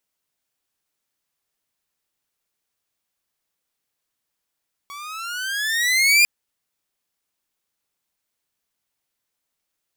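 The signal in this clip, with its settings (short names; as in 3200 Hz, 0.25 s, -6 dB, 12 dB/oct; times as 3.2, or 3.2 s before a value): gliding synth tone saw, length 1.35 s, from 1120 Hz, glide +13.5 st, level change +23.5 dB, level -8 dB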